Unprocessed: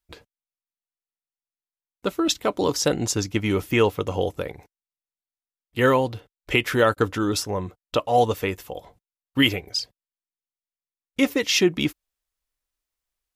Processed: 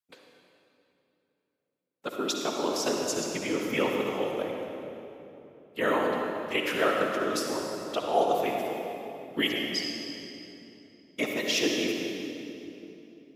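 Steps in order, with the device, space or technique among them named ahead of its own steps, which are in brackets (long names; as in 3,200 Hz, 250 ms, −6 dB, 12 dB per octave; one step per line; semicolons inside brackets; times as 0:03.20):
whispering ghost (random phases in short frames; high-pass filter 260 Hz 12 dB per octave; convolution reverb RT60 3.1 s, pre-delay 52 ms, DRR 0.5 dB)
level −7.5 dB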